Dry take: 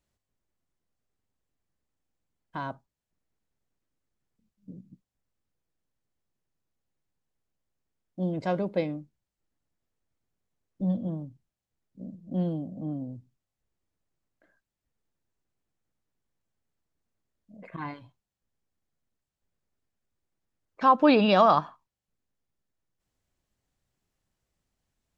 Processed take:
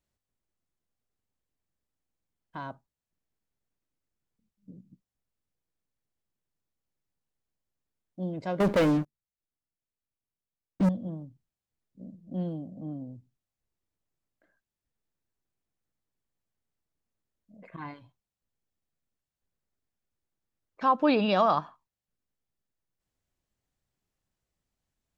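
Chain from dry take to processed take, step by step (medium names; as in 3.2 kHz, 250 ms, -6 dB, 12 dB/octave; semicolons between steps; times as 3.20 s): 8.60–10.89 s: waveshaping leveller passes 5; trim -4 dB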